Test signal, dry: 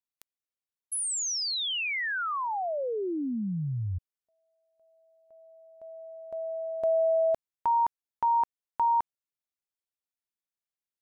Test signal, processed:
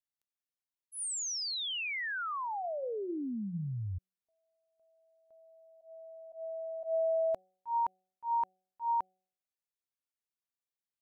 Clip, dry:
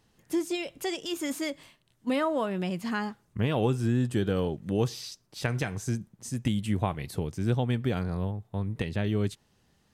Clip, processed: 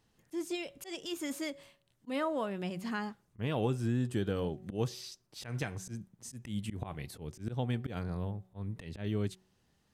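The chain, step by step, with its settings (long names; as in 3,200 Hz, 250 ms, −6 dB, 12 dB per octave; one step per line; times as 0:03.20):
volume swells 110 ms
hum removal 186.5 Hz, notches 4
level −5.5 dB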